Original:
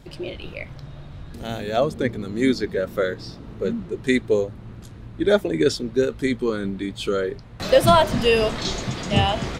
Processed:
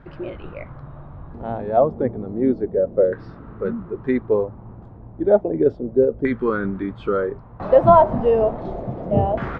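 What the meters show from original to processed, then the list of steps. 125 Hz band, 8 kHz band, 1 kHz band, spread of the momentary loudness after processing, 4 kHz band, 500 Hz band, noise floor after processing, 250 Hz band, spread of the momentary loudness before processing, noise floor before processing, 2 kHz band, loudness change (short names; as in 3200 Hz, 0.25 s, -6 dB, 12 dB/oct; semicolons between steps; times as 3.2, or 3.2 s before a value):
-0.5 dB, under -35 dB, +3.5 dB, 18 LU, under -20 dB, +3.0 dB, -41 dBFS, +0.5 dB, 19 LU, -41 dBFS, -6.5 dB, +2.0 dB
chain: LFO low-pass saw down 0.32 Hz 560–1500 Hz; vocal rider 2 s; gain -2 dB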